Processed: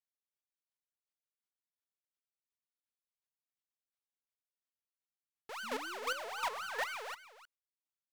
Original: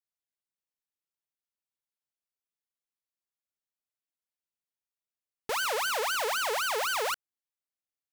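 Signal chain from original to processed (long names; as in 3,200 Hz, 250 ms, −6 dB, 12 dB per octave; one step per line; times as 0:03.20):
sound drawn into the spectrogram rise, 0:05.63–0:06.98, 210–2,500 Hz −35 dBFS
low-shelf EQ 230 Hz −4.5 dB
mid-hump overdrive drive 5 dB, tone 4,700 Hz, clips at −20.5 dBFS
square-wave tremolo 2.8 Hz, depth 65%, duty 15%
on a send: single-tap delay 310 ms −15 dB
on the sum: level −4 dB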